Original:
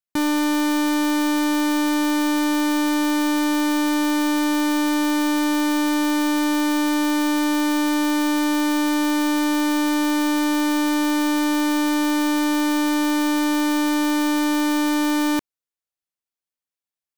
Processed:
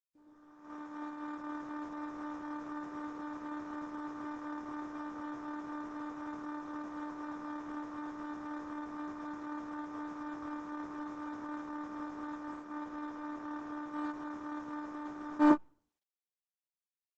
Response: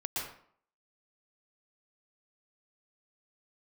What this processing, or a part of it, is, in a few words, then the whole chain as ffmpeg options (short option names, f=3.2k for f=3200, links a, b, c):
speakerphone in a meeting room: -filter_complex "[0:a]afwtdn=0.0631,asettb=1/sr,asplit=3[a][b][c];[a]atrim=end=12.514[d];[b]atrim=start=12.51:end=13.93,asetpts=PTS-STARTPTS,afade=t=in:d=0.004:c=qsin,afade=t=out:st=1.416:d=0.004:c=qsin,lowpass=7.6k[e];[c]atrim=start=13.926[f];[d][e]acrossfade=d=0.004:c1=hsin:c2=qsin[g];[g][f]acrossfade=d=0.004:c1=qsin:c2=hsin[h];[1:a]atrim=start_sample=2205[i];[h][i]afir=irnorm=-1:irlink=0,asplit=2[j][k];[k]adelay=130,highpass=300,lowpass=3.4k,asoftclip=type=hard:threshold=-20.5dB,volume=-11dB[l];[j][l]amix=inputs=2:normalize=0,dynaudnorm=f=320:g=3:m=7dB,agate=range=-40dB:threshold=-12dB:ratio=16:detection=peak" -ar 48000 -c:a libopus -b:a 12k